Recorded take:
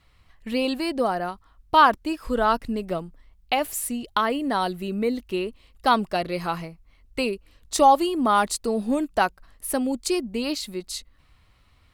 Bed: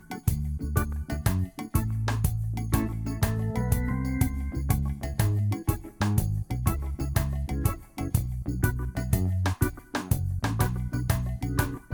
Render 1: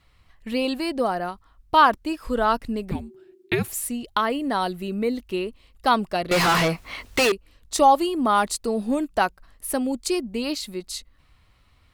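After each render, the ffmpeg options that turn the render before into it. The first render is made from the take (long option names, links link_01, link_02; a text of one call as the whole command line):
ffmpeg -i in.wav -filter_complex "[0:a]asettb=1/sr,asplit=3[link_01][link_02][link_03];[link_01]atrim=end=2.914[link_04];[link_02]atrim=start=2.91:end=3.68,asetpts=PTS-STARTPTS,afade=type=in:duration=0.004:curve=qsin,afade=type=out:start_time=0.766:duration=0.004:curve=qsin,afreqshift=-400[link_05];[link_03]atrim=start=3.676[link_06];[link_04][link_05]acrossfade=duration=0.004:curve1=hsin:curve2=qsin[link_07];[link_07][link_06]acrossfade=duration=0.004:curve1=qsin:curve2=hsin,asettb=1/sr,asplit=3[link_08][link_09][link_10];[link_08]atrim=end=6.314[link_11];[link_09]atrim=start=6.31:end=7.32,asetpts=PTS-STARTPTS,afade=type=in:duration=0.004:curve=qsin,afade=type=out:start_time=1.006:duration=0.004:curve=qsin,asplit=2[link_12][link_13];[link_13]highpass=frequency=720:poles=1,volume=37dB,asoftclip=type=tanh:threshold=-12.5dB[link_14];[link_12][link_14]amix=inputs=2:normalize=0,lowpass=frequency=6400:poles=1,volume=-6dB[link_15];[link_10]atrim=start=7.316[link_16];[link_11][link_15]acrossfade=duration=0.004:curve1=hsin:curve2=qsin[link_17];[link_17][link_16]acrossfade=duration=0.004:curve1=qsin:curve2=hsin" out.wav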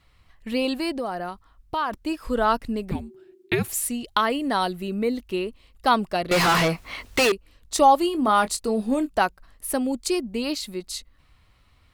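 ffmpeg -i in.wav -filter_complex "[0:a]asplit=3[link_01][link_02][link_03];[link_01]afade=type=out:start_time=0.95:duration=0.02[link_04];[link_02]acompressor=threshold=-27dB:ratio=2.5:attack=3.2:release=140:knee=1:detection=peak,afade=type=in:start_time=0.95:duration=0.02,afade=type=out:start_time=1.91:duration=0.02[link_05];[link_03]afade=type=in:start_time=1.91:duration=0.02[link_06];[link_04][link_05][link_06]amix=inputs=3:normalize=0,asettb=1/sr,asplit=3[link_07][link_08][link_09];[link_07]atrim=end=3.694[link_10];[link_08]atrim=start=3.69:end=4.66,asetpts=PTS-STARTPTS,afade=type=in:duration=0.004:curve=qsin,afade=type=out:start_time=0.966:duration=0.004:curve=qsin,equalizer=frequency=5300:width=0.34:gain=3.5[link_11];[link_09]atrim=start=4.656[link_12];[link_10][link_11]acrossfade=duration=0.004:curve1=hsin:curve2=qsin[link_13];[link_13][link_12]acrossfade=duration=0.004:curve1=qsin:curve2=hsin,asettb=1/sr,asplit=3[link_14][link_15][link_16];[link_14]atrim=end=8.014[link_17];[link_15]atrim=start=8.01:end=9.1,asetpts=PTS-STARTPTS,afade=type=in:duration=0.004:curve=qsin,afade=type=out:start_time=1.086:duration=0.004:curve=qsin,asplit=2[link_18][link_19];[link_19]adelay=23,volume=-11dB[link_20];[link_18][link_20]amix=inputs=2:normalize=0,atrim=end_sample=48069[link_21];[link_16]atrim=start=9.096[link_22];[link_17][link_21]acrossfade=duration=0.004:curve1=hsin:curve2=qsin[link_23];[link_23][link_22]acrossfade=duration=0.004:curve1=qsin:curve2=hsin" out.wav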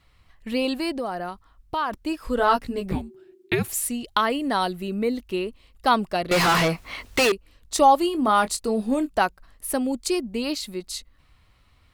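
ffmpeg -i in.wav -filter_complex "[0:a]asettb=1/sr,asplit=3[link_01][link_02][link_03];[link_01]atrim=end=2.364[link_04];[link_02]atrim=start=2.36:end=3.02,asetpts=PTS-STARTPTS,afade=type=in:duration=0.004:curve=qsin,afade=type=out:start_time=0.656:duration=0.004:curve=qsin,asplit=2[link_05][link_06];[link_06]adelay=16,volume=-2.5dB[link_07];[link_05][link_07]amix=inputs=2:normalize=0,atrim=end_sample=29106[link_08];[link_03]atrim=start=3.016[link_09];[link_04][link_08]acrossfade=duration=0.004:curve1=hsin:curve2=qsin[link_10];[link_10][link_09]acrossfade=duration=0.004:curve1=qsin:curve2=hsin" out.wav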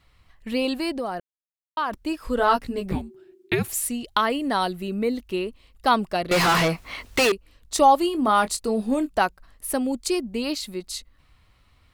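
ffmpeg -i in.wav -filter_complex "[0:a]asplit=3[link_01][link_02][link_03];[link_01]atrim=end=1.2,asetpts=PTS-STARTPTS,afade=type=out:start_time=1.196:duration=0.004:curve=hsin[link_04];[link_02]atrim=start=1.2:end=1.77,asetpts=PTS-STARTPTS,volume=0[link_05];[link_03]atrim=start=1.77,asetpts=PTS-STARTPTS,afade=type=in:duration=0.004:curve=hsin[link_06];[link_04][link_05][link_06]concat=n=3:v=0:a=1" out.wav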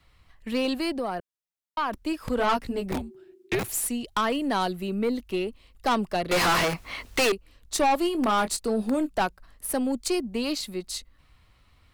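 ffmpeg -i in.wav -filter_complex "[0:a]aeval=exprs='(tanh(7.94*val(0)+0.25)-tanh(0.25))/7.94':channel_layout=same,acrossover=split=220|510|5900[link_01][link_02][link_03][link_04];[link_01]aeval=exprs='(mod(20*val(0)+1,2)-1)/20':channel_layout=same[link_05];[link_05][link_02][link_03][link_04]amix=inputs=4:normalize=0" out.wav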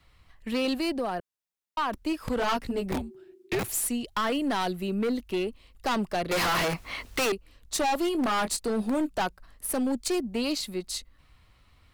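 ffmpeg -i in.wav -af "asoftclip=type=hard:threshold=-23dB" out.wav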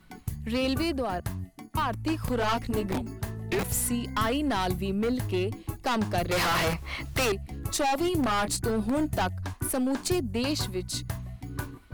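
ffmpeg -i in.wav -i bed.wav -filter_complex "[1:a]volume=-8.5dB[link_01];[0:a][link_01]amix=inputs=2:normalize=0" out.wav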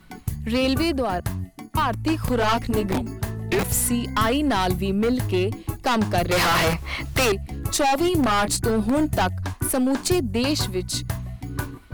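ffmpeg -i in.wav -af "volume=6dB" out.wav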